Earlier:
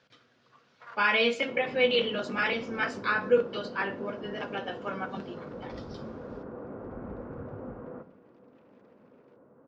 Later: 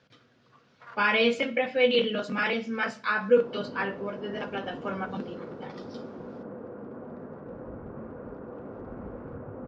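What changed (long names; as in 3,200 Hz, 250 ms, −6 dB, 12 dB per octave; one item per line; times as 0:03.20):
speech: add low-shelf EQ 340 Hz +7.5 dB
second sound: entry +1.95 s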